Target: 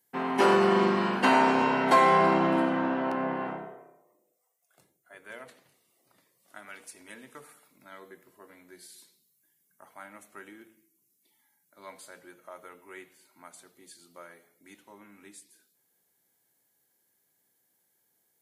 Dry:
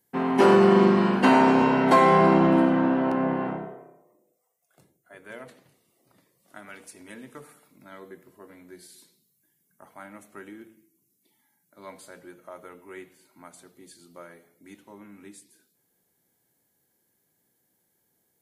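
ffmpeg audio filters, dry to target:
-af "lowshelf=f=460:g=-10"

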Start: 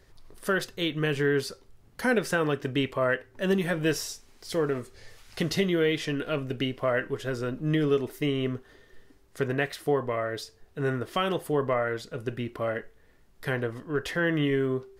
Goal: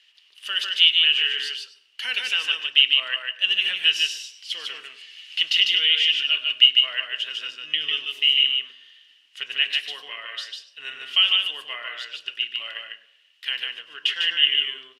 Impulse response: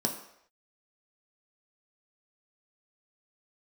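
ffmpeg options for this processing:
-filter_complex "[0:a]highpass=f=2.9k:t=q:w=13,aemphasis=mode=reproduction:type=bsi,aecho=1:1:149:0.668,asplit=2[a][b];[1:a]atrim=start_sample=2205,adelay=100[c];[b][c]afir=irnorm=-1:irlink=0,volume=-21dB[d];[a][d]amix=inputs=2:normalize=0,volume=5dB"

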